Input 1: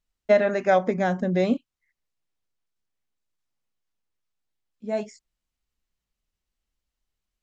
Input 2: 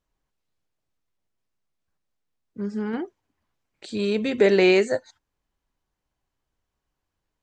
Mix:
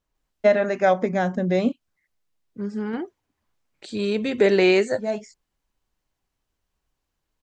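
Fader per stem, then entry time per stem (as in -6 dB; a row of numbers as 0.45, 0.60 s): +1.0, 0.0 dB; 0.15, 0.00 s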